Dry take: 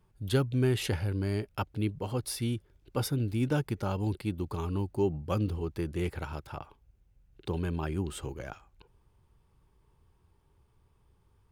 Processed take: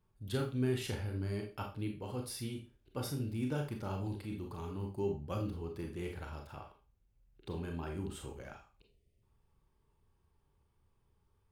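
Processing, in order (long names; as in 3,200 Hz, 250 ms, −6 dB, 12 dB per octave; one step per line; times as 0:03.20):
0:08.81–0:09.22: gain on a spectral selection 720–1,800 Hz −27 dB
four-comb reverb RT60 0.32 s, combs from 28 ms, DRR 2 dB
0:03.96–0:04.83: transient designer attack −5 dB, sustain +1 dB
level −9 dB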